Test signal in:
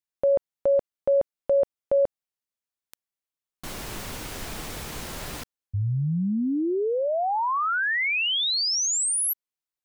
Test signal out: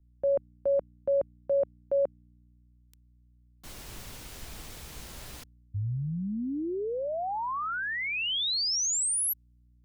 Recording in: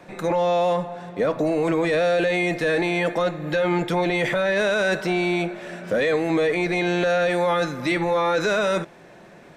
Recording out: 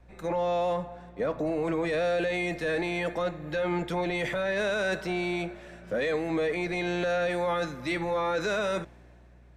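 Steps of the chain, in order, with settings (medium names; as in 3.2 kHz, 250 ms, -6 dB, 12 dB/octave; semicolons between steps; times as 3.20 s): hum 60 Hz, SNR 22 dB; three bands expanded up and down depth 40%; trim -7 dB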